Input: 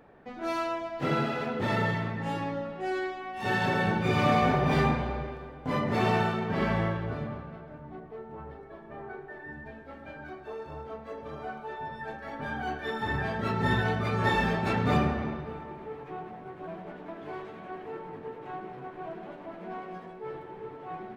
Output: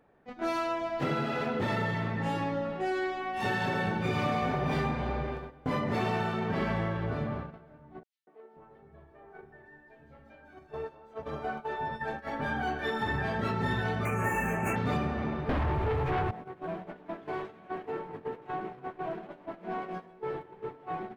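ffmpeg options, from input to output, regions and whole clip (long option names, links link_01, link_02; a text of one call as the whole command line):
ffmpeg -i in.wav -filter_complex "[0:a]asettb=1/sr,asplit=3[link_01][link_02][link_03];[link_01]atrim=end=8.034[link_04];[link_02]atrim=start=8.03:end=11.23,asetpts=PTS-STARTPTS,afade=type=in:duration=0.004:curve=qsin,afade=type=out:start_time=3.196:duration=0.004:curve=qsin,equalizer=frequency=1200:width_type=o:width=1.7:gain=-2.5,acrossover=split=260|4400[link_05][link_06][link_07];[link_06]adelay=240[link_08];[link_05]adelay=530[link_09];[link_09][link_08][link_07]amix=inputs=3:normalize=0,atrim=end_sample=141120[link_10];[link_03]atrim=start=11.226[link_11];[link_04][link_10]acrossfade=duration=0.004:curve1=hsin:curve2=qsin[link_12];[link_12][link_11]acrossfade=duration=0.004:curve1=qsin:curve2=hsin,asettb=1/sr,asplit=3[link_13][link_14][link_15];[link_13]atrim=end=14.054[link_16];[link_14]atrim=start=14.05:end=14.76,asetpts=PTS-STARTPTS,afade=type=in:duration=0.004:curve=qsin,afade=type=out:start_time=0.706:duration=0.004:curve=qsin,asuperstop=centerf=4200:order=12:qfactor=1.2,aemphasis=mode=production:type=75kf[link_17];[link_15]atrim=start=14.756[link_18];[link_16][link_17]acrossfade=duration=0.004:curve1=hsin:curve2=qsin[link_19];[link_19][link_18]acrossfade=duration=0.004:curve1=qsin:curve2=hsin,asettb=1/sr,asplit=3[link_20][link_21][link_22];[link_20]atrim=end=15.494[link_23];[link_21]atrim=start=15.49:end=16.31,asetpts=PTS-STARTPTS,afade=type=in:duration=0.004:curve=qsin,afade=type=out:start_time=0.816:duration=0.004:curve=qsin,lowshelf=frequency=140:width_type=q:width=3:gain=11.5,aeval=exprs='0.075*sin(PI/2*3.98*val(0)/0.075)':channel_layout=same[link_24];[link_22]atrim=start=16.306[link_25];[link_23][link_24]acrossfade=duration=0.004:curve1=hsin:curve2=qsin[link_26];[link_26][link_25]acrossfade=duration=0.004:curve1=qsin:curve2=hsin,agate=range=-13dB:threshold=-40dB:ratio=16:detection=peak,acompressor=threshold=-32dB:ratio=4,volume=4dB" out.wav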